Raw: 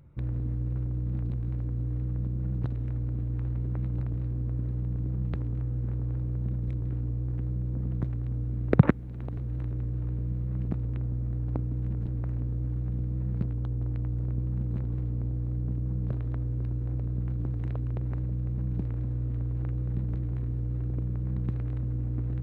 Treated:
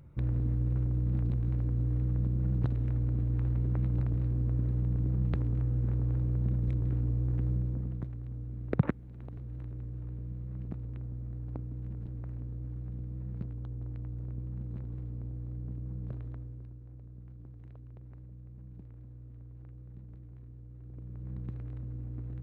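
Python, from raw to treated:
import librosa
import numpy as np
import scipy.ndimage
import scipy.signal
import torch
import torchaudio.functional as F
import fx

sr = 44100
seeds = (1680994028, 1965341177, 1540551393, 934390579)

y = fx.gain(x, sr, db=fx.line((7.55, 1.0), (8.09, -8.5), (16.23, -8.5), (16.82, -18.0), (20.77, -18.0), (21.32, -9.0)))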